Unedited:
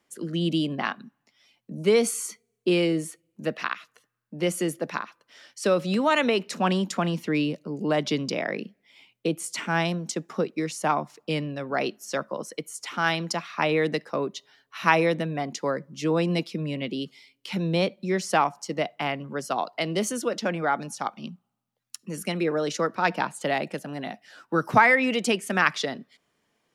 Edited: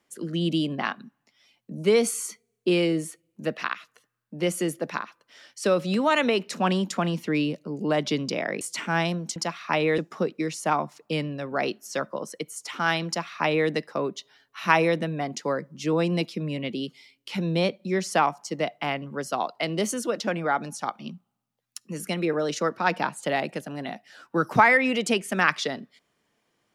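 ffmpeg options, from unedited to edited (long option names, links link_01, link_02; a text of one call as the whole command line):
ffmpeg -i in.wav -filter_complex "[0:a]asplit=4[link_01][link_02][link_03][link_04];[link_01]atrim=end=8.612[link_05];[link_02]atrim=start=9.408:end=10.162[link_06];[link_03]atrim=start=13.248:end=13.872[link_07];[link_04]atrim=start=10.158[link_08];[link_05][link_06]acrossfade=duration=0.004:curve1=hsin:curve2=hsin[link_09];[link_09][link_07]acrossfade=duration=0.004:curve1=hsin:curve2=hsin[link_10];[link_10][link_08]acrossfade=duration=0.004:curve1=hsin:curve2=hsin" out.wav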